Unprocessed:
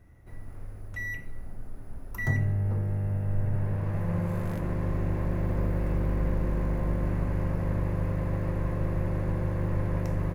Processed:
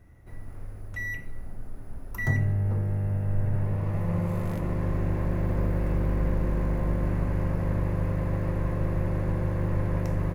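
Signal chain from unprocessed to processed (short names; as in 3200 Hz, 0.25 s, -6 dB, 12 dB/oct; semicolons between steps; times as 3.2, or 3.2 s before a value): 3.63–4.77 notch 1600 Hz, Q 9.6; gain +1.5 dB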